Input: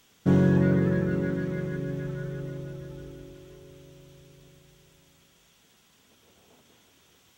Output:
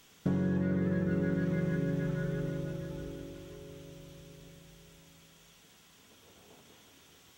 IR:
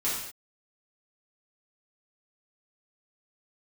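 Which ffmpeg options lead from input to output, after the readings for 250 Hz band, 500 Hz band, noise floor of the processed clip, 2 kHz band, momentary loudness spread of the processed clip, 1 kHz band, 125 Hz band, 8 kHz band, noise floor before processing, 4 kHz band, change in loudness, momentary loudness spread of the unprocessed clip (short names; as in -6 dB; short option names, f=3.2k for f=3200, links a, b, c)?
-5.5 dB, -6.0 dB, -61 dBFS, -5.0 dB, 20 LU, -6.5 dB, -6.0 dB, n/a, -62 dBFS, -1.5 dB, -6.5 dB, 21 LU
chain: -filter_complex "[0:a]acompressor=threshold=-29dB:ratio=10,asplit=2[a][b];[1:a]atrim=start_sample=2205[c];[b][c]afir=irnorm=-1:irlink=0,volume=-15.5dB[d];[a][d]amix=inputs=2:normalize=0"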